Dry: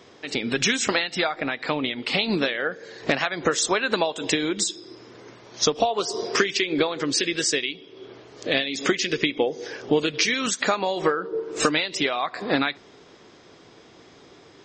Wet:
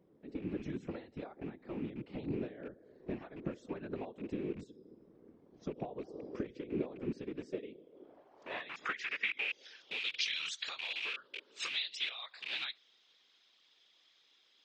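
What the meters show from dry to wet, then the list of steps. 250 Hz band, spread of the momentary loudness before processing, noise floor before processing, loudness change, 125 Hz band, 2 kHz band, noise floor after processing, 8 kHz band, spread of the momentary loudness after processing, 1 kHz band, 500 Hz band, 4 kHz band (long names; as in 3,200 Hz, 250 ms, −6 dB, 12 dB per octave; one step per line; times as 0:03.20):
−14.5 dB, 6 LU, −51 dBFS, −16.0 dB, −11.5 dB, −15.0 dB, −70 dBFS, −26.5 dB, 13 LU, −22.5 dB, −19.0 dB, −14.5 dB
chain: loose part that buzzes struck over −36 dBFS, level −12 dBFS
band-pass filter sweep 260 Hz → 3,500 Hz, 0:07.33–0:09.74
random phases in short frames
level −8.5 dB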